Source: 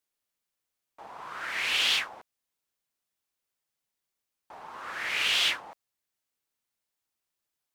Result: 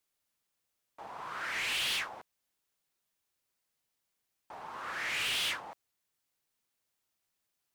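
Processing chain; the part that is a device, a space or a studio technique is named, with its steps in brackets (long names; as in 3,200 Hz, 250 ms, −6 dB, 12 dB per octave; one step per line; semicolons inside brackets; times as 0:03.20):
open-reel tape (soft clipping −30 dBFS, distortion −7 dB; parametric band 120 Hz +3 dB 1.03 octaves; white noise bed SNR 46 dB)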